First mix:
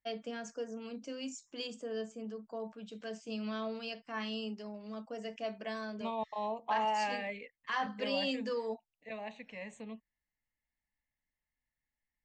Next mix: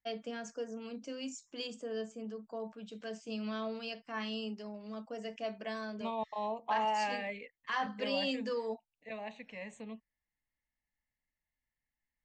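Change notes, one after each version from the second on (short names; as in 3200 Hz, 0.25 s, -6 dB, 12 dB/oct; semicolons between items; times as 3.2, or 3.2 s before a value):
none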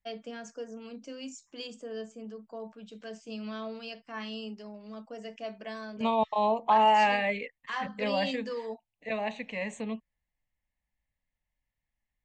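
second voice +10.5 dB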